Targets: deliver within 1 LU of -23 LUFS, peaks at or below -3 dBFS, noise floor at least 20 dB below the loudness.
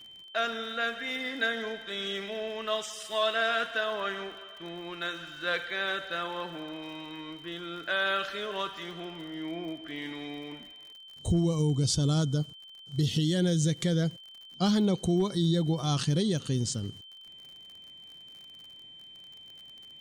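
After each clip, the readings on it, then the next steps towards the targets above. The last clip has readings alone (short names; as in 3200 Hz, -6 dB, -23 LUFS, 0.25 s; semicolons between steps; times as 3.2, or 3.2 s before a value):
ticks 51/s; steady tone 3100 Hz; tone level -47 dBFS; loudness -30.5 LUFS; peak -17.0 dBFS; loudness target -23.0 LUFS
-> de-click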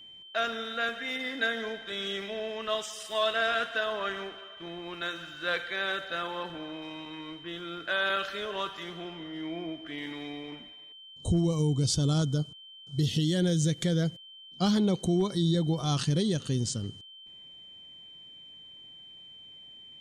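ticks 0.050/s; steady tone 3100 Hz; tone level -47 dBFS
-> notch 3100 Hz, Q 30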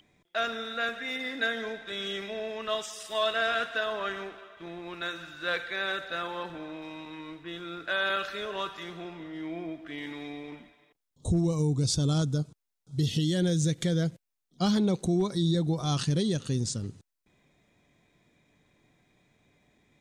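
steady tone none; loudness -30.5 LUFS; peak -16.5 dBFS; loudness target -23.0 LUFS
-> gain +7.5 dB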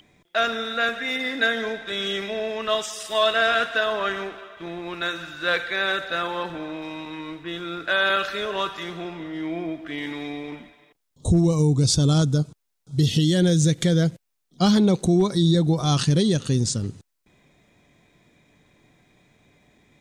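loudness -23.0 LUFS; peak -9.0 dBFS; noise floor -75 dBFS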